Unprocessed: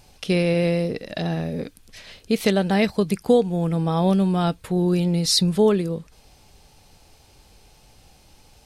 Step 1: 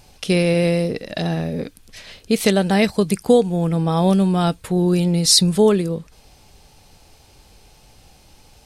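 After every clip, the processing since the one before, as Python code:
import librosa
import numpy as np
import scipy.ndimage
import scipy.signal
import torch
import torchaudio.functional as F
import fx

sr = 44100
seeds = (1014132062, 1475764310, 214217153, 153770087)

y = fx.dynamic_eq(x, sr, hz=8600.0, q=1.0, threshold_db=-49.0, ratio=4.0, max_db=7)
y = F.gain(torch.from_numpy(y), 3.0).numpy()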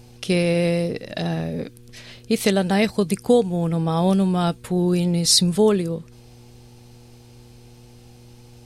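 y = fx.dmg_buzz(x, sr, base_hz=120.0, harmonics=4, level_db=-45.0, tilt_db=-6, odd_only=False)
y = F.gain(torch.from_numpy(y), -2.5).numpy()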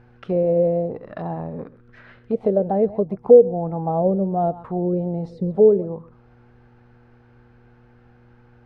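y = x + 10.0 ** (-18.5 / 20.0) * np.pad(x, (int(129 * sr / 1000.0), 0))[:len(x)]
y = fx.envelope_lowpass(y, sr, base_hz=490.0, top_hz=1600.0, q=4.7, full_db=-14.0, direction='down')
y = F.gain(torch.from_numpy(y), -5.5).numpy()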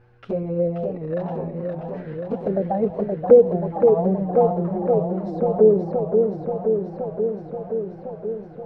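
y = fx.env_flanger(x, sr, rest_ms=10.9, full_db=-12.5)
y = fx.echo_warbled(y, sr, ms=527, feedback_pct=75, rate_hz=2.8, cents=161, wet_db=-4.5)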